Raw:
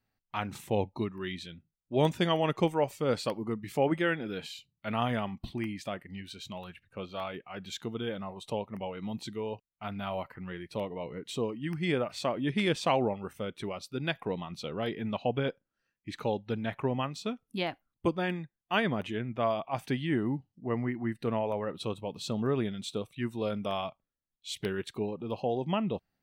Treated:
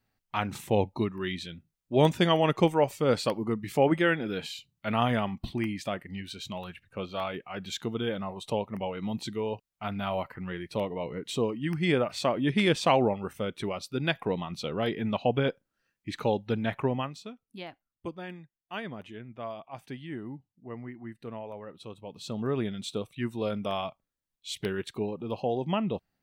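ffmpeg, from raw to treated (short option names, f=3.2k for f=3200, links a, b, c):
-af "volume=14.5dB,afade=t=out:st=16.77:d=0.52:silence=0.223872,afade=t=in:st=21.9:d=0.85:silence=0.298538"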